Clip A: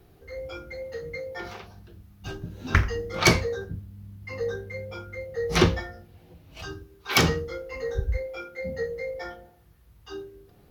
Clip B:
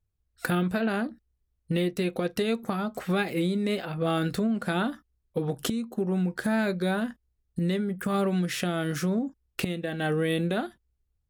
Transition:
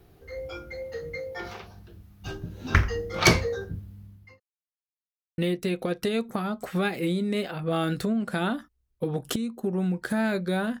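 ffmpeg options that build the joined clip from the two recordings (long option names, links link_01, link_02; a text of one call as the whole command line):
ffmpeg -i cue0.wav -i cue1.wav -filter_complex "[0:a]apad=whole_dur=10.8,atrim=end=10.8,asplit=2[link_01][link_02];[link_01]atrim=end=4.4,asetpts=PTS-STARTPTS,afade=type=out:start_time=3.9:duration=0.5[link_03];[link_02]atrim=start=4.4:end=5.38,asetpts=PTS-STARTPTS,volume=0[link_04];[1:a]atrim=start=1.72:end=7.14,asetpts=PTS-STARTPTS,afade=type=in:duration=0.004:curve=hsin[link_05];[link_03][link_04][link_05]concat=n=3:v=0:a=1" out.wav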